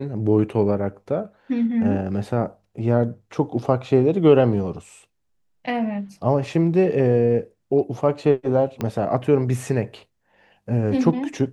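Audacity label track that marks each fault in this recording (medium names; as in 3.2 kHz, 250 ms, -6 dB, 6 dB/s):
8.810000	8.810000	pop -13 dBFS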